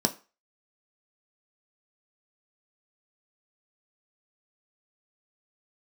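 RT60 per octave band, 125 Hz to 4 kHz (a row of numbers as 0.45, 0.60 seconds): 0.25, 0.30, 0.30, 0.35, 0.35, 0.30 seconds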